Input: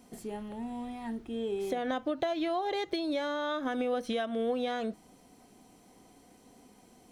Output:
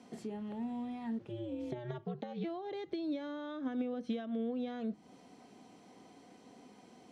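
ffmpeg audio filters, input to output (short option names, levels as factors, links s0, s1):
-filter_complex "[0:a]asplit=3[s0][s1][s2];[s0]afade=t=out:st=1.18:d=0.02[s3];[s1]aeval=exprs='val(0)*sin(2*PI*120*n/s)':c=same,afade=t=in:st=1.18:d=0.02,afade=t=out:st=2.43:d=0.02[s4];[s2]afade=t=in:st=2.43:d=0.02[s5];[s3][s4][s5]amix=inputs=3:normalize=0,highpass=130,lowpass=5300,acrossover=split=300[s6][s7];[s7]acompressor=threshold=0.00355:ratio=4[s8];[s6][s8]amix=inputs=2:normalize=0,volume=1.19"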